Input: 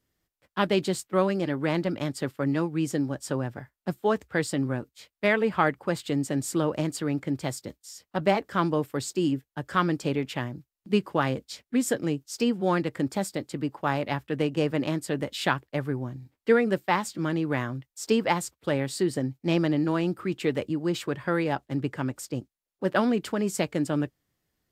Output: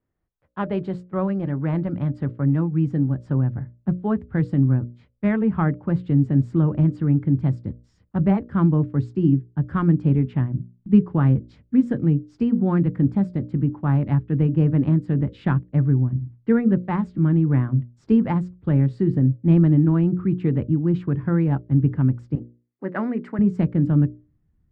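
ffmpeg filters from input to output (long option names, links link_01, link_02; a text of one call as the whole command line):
ffmpeg -i in.wav -filter_complex "[0:a]asettb=1/sr,asplit=3[link_01][link_02][link_03];[link_01]atrim=end=22.354[link_04];[link_02]atrim=start=22.35:end=23.39,asetpts=PTS-STARTPTS,afade=type=in:duration=0.004:curve=qsin,afade=type=out:start_time=1.036:duration=0.004:curve=qsin,highpass=360,equalizer=frequency=2000:width_type=q:width=4:gain=10,equalizer=frequency=3300:width_type=q:width=4:gain=-8,equalizer=frequency=8300:width_type=q:width=4:gain=7,lowpass=frequency=9900:width=0.5412,lowpass=frequency=9900:width=1.3066[link_05];[link_03]atrim=start=23.386[link_06];[link_04][link_05]acrossfade=duration=0.004:curve1=hsin:curve2=qsin[link_07];[link_07][link_06]acrossfade=duration=0.004:curve1=qsin:curve2=hsin,lowpass=1300,asubboost=boost=10.5:cutoff=170,bandreject=frequency=60:width_type=h:width=6,bandreject=frequency=120:width_type=h:width=6,bandreject=frequency=180:width_type=h:width=6,bandreject=frequency=240:width_type=h:width=6,bandreject=frequency=300:width_type=h:width=6,bandreject=frequency=360:width_type=h:width=6,bandreject=frequency=420:width_type=h:width=6,bandreject=frequency=480:width_type=h:width=6,bandreject=frequency=540:width_type=h:width=6,bandreject=frequency=600:width_type=h:width=6" out.wav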